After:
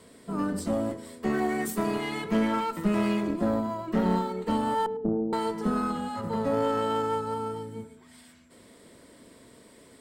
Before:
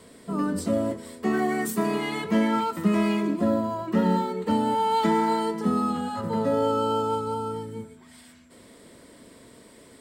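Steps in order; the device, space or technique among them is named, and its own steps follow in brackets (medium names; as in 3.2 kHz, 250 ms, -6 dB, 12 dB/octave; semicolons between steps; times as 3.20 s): 4.86–5.33 s: steep low-pass 510 Hz 96 dB/octave; rockabilly slapback (valve stage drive 15 dB, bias 0.6; tape echo 106 ms, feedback 29%, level -16 dB, low-pass 1.5 kHz)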